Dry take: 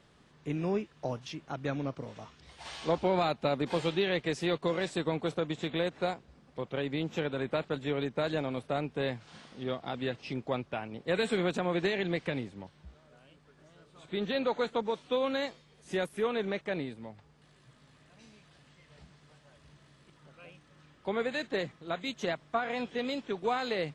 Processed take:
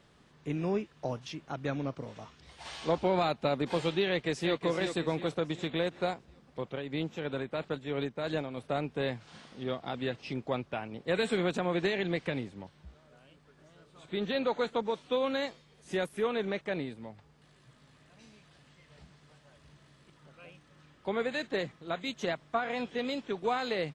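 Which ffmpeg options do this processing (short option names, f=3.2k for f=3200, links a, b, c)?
-filter_complex "[0:a]asplit=2[a][b];[b]afade=t=in:st=4.07:d=0.01,afade=t=out:st=4.58:d=0.01,aecho=0:1:370|740|1110|1480|1850:0.421697|0.189763|0.0853935|0.0384271|0.0172922[c];[a][c]amix=inputs=2:normalize=0,asettb=1/sr,asplit=3[d][e][f];[d]atrim=end=6.674[g];[e]atrim=start=6.67:end=8.7,asetpts=PTS-STARTPTS,afade=t=in:d=0.004:c=qsin,afade=t=out:st=2.026:d=0.004:c=qsin,tremolo=f=3:d=0.5[h];[f]atrim=start=8.696[i];[g][h]acrossfade=d=0.004:c1=hsin:c2=qsin[j];[j][i]acrossfade=d=0.004:c1=qsin:c2=hsin"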